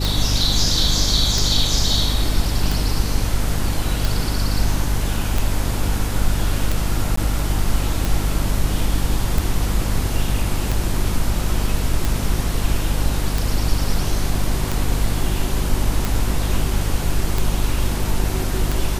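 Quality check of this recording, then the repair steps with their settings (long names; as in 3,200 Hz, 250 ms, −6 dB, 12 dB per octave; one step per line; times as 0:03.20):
mains hum 50 Hz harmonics 6 −23 dBFS
scratch tick 45 rpm
0:07.16–0:07.17: drop-out 14 ms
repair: click removal
hum removal 50 Hz, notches 6
repair the gap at 0:07.16, 14 ms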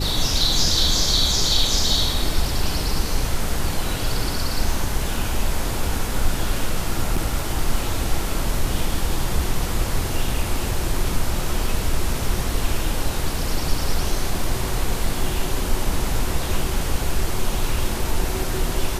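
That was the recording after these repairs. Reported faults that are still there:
none of them is left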